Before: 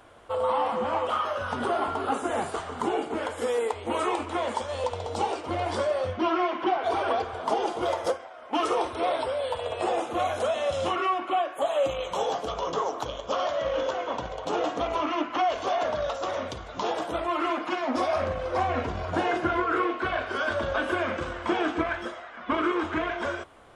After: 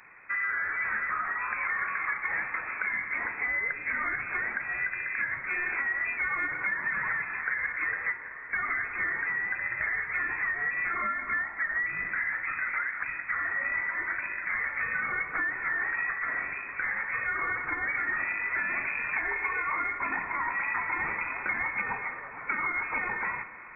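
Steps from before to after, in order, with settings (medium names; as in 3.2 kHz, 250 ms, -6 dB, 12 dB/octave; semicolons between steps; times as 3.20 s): compression, threshold -27 dBFS, peak gain reduction 7 dB; on a send at -12.5 dB: reverberation RT60 5.0 s, pre-delay 50 ms; on the sum: frequency inversion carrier 2.5 kHz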